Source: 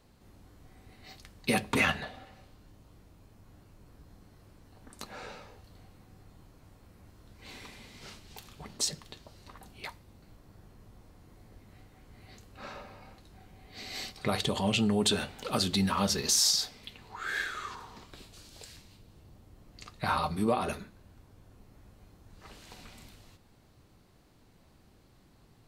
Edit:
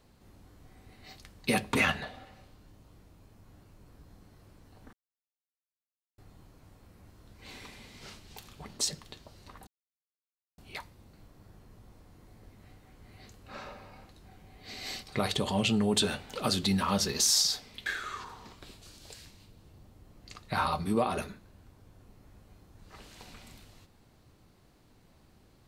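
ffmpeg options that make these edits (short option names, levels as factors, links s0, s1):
-filter_complex "[0:a]asplit=5[s0][s1][s2][s3][s4];[s0]atrim=end=4.93,asetpts=PTS-STARTPTS,afade=t=out:st=4.926:d=0.004:c=hsin[s5];[s1]atrim=start=4.93:end=6.18,asetpts=PTS-STARTPTS,volume=0[s6];[s2]atrim=start=6.18:end=9.67,asetpts=PTS-STARTPTS,afade=t=in:d=0.004:c=hsin,afade=t=out:st=3.486:d=0.004:c=hsin,apad=pad_dur=0.91[s7];[s3]atrim=start=9.67:end=16.952,asetpts=PTS-STARTPTS,afade=t=in:d=0.004:c=hsin[s8];[s4]atrim=start=17.368[s9];[s5][s6][s7][s8]concat=n=4:v=0:a=1[s10];[s10][s9]acrossfade=d=0.004:c1=hsin:c2=hsin"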